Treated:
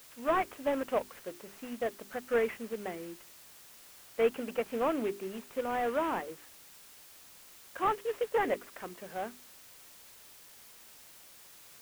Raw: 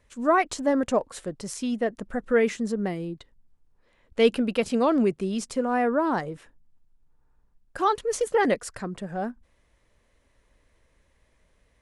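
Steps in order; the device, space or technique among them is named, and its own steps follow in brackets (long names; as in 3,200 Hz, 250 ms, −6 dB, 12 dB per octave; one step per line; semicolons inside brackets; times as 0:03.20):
army field radio (band-pass filter 360–2,800 Hz; variable-slope delta modulation 16 kbit/s; white noise bed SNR 19 dB)
mains-hum notches 50/100/150/200/250/300/350/400 Hz
level −5 dB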